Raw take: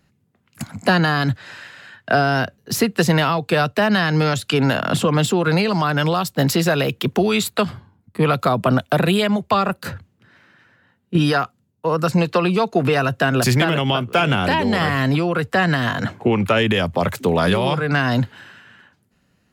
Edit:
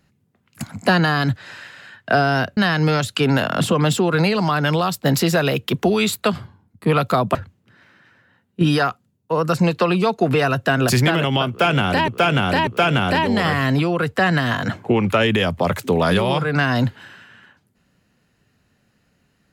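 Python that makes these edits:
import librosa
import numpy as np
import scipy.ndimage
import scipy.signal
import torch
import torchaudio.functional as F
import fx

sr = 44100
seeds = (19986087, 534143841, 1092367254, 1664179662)

y = fx.edit(x, sr, fx.cut(start_s=2.57, length_s=1.33),
    fx.cut(start_s=8.68, length_s=1.21),
    fx.repeat(start_s=14.03, length_s=0.59, count=3), tone=tone)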